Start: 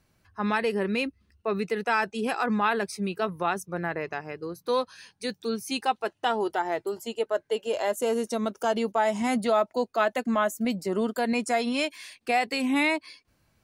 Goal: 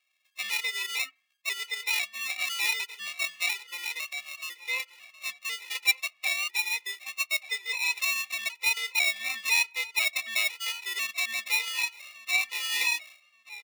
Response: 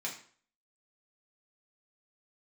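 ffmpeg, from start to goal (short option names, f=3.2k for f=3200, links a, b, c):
-filter_complex "[0:a]acrusher=samples=28:mix=1:aa=0.000001,highpass=f=2.5k:t=q:w=2.5,asplit=2[a][b];[b]adelay=1180,lowpass=f=4.2k:p=1,volume=-17dB,asplit=2[c][d];[d]adelay=1180,lowpass=f=4.2k:p=1,volume=0.23[e];[a][c][e]amix=inputs=3:normalize=0,asplit=2[f][g];[1:a]atrim=start_sample=2205,lowpass=2.3k[h];[g][h]afir=irnorm=-1:irlink=0,volume=-23.5dB[i];[f][i]amix=inputs=2:normalize=0,afftfilt=real='re*gt(sin(2*PI*1*pts/sr)*(1-2*mod(floor(b*sr/1024/260),2)),0)':imag='im*gt(sin(2*PI*1*pts/sr)*(1-2*mod(floor(b*sr/1024/260),2)),0)':win_size=1024:overlap=0.75,volume=4.5dB"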